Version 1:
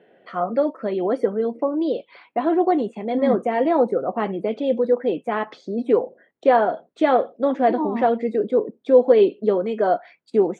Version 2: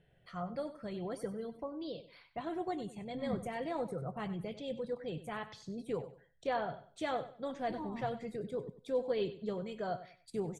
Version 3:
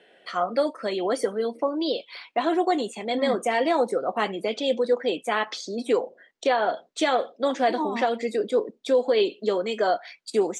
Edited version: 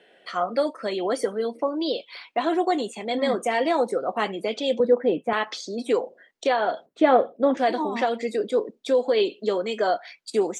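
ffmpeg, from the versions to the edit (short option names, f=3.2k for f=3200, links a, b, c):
-filter_complex "[0:a]asplit=2[a][b];[2:a]asplit=3[c][d][e];[c]atrim=end=4.802[f];[a]atrim=start=4.798:end=5.332[g];[d]atrim=start=5.328:end=6.862[h];[b]atrim=start=6.858:end=7.572[i];[e]atrim=start=7.568[j];[f][g]acrossfade=d=0.004:c1=hsin:c2=hsin[k];[k][h]acrossfade=d=0.004:c1=hsin:c2=hsin[l];[l][i]acrossfade=d=0.004:c1=hsin:c2=hsin[m];[m][j]acrossfade=d=0.004:c1=hsin:c2=hsin"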